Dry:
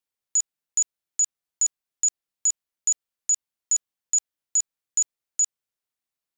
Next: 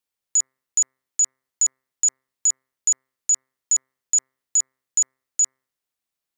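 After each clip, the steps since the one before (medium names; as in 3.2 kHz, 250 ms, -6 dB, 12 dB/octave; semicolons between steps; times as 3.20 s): de-hum 131.4 Hz, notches 17; trim +3 dB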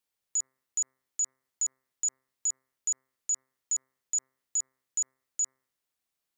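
dynamic bell 2.8 kHz, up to -6 dB, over -40 dBFS, Q 1; peak limiter -23 dBFS, peak gain reduction 10 dB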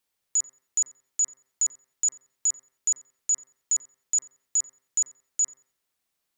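filtered feedback delay 89 ms, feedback 30%, low-pass 4.3 kHz, level -19.5 dB; trim +5 dB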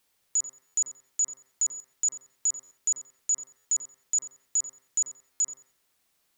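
dynamic bell 1.8 kHz, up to -7 dB, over -55 dBFS, Q 2.1; peak limiter -28 dBFS, peak gain reduction 10 dB; buffer glitch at 0.66/1.72/2.63/3.57/5.32 s, samples 512, times 6; trim +8 dB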